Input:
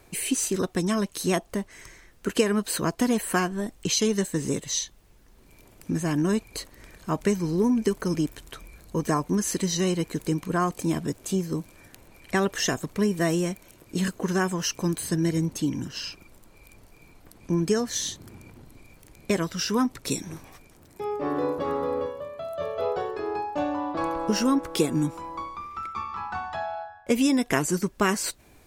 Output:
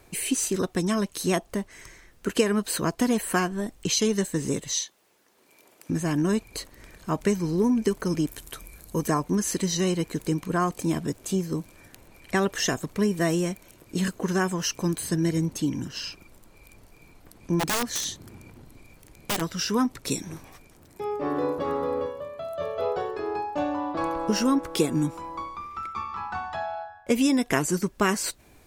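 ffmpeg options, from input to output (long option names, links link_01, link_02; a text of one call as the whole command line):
ffmpeg -i in.wav -filter_complex "[0:a]asettb=1/sr,asplit=3[link_01][link_02][link_03];[link_01]atrim=end=4.734[link_04];[link_02]atrim=start=4.73:end=5.9,asetpts=PTS-STARTPTS,afade=type=in:duration=0.004:curve=qsin,afade=type=out:start_time=1.166:duration=0.004:curve=qsin,highpass=370[link_05];[link_03]atrim=start=5.896[link_06];[link_04][link_05]acrossfade=duration=0.004:curve1=hsin:curve2=qsin[link_07];[link_07][link_06]acrossfade=duration=0.004:curve1=qsin:curve2=hsin,asettb=1/sr,asplit=3[link_08][link_09][link_10];[link_08]atrim=end=8.284[link_11];[link_09]atrim=start=8.28:end=9.08,asetpts=PTS-STARTPTS,afade=type=in:duration=0.004:curve=qsin,afade=type=out:start_time=0.796:duration=0.004:curve=qsin,equalizer=frequency=12000:width=0.63:gain=10.5[link_12];[link_10]atrim=start=9.076[link_13];[link_11][link_12]acrossfade=duration=0.004:curve1=hsin:curve2=qsin[link_14];[link_14][link_13]acrossfade=duration=0.004:curve1=qsin:curve2=hsin,asplit=3[link_15][link_16][link_17];[link_15]afade=type=out:start_time=17.59:duration=0.02[link_18];[link_16]aeval=exprs='(mod(10*val(0)+1,2)-1)/10':channel_layout=same,afade=type=in:start_time=17.59:duration=0.02,afade=type=out:start_time=19.4:duration=0.02[link_19];[link_17]afade=type=in:start_time=19.4:duration=0.02[link_20];[link_18][link_19][link_20]amix=inputs=3:normalize=0" out.wav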